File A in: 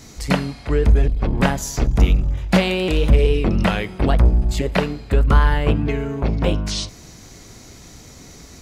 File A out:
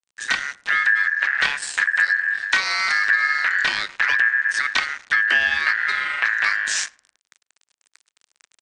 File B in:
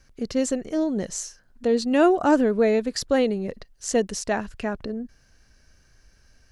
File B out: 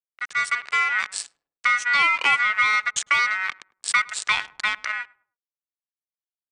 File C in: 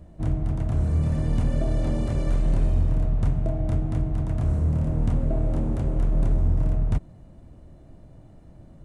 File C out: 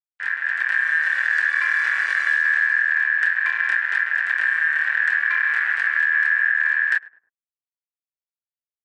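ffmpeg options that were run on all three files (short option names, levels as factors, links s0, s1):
-filter_complex "[0:a]aresample=16000,aeval=exprs='sgn(val(0))*max(abs(val(0))-0.0224,0)':c=same,aresample=44100,lowpass=f=2500:p=1,aeval=exprs='val(0)*sin(2*PI*1700*n/s)':c=same,asplit=2[s0][s1];[s1]adelay=104,lowpass=f=820:p=1,volume=0.112,asplit=2[s2][s3];[s3]adelay=104,lowpass=f=820:p=1,volume=0.41,asplit=2[s4][s5];[s5]adelay=104,lowpass=f=820:p=1,volume=0.41[s6];[s0][s2][s4][s6]amix=inputs=4:normalize=0,acrossover=split=330[s7][s8];[s8]dynaudnorm=f=360:g=3:m=2.51[s9];[s7][s9]amix=inputs=2:normalize=0,crystalizer=i=6:c=0,acompressor=threshold=0.178:ratio=3,volume=0.75"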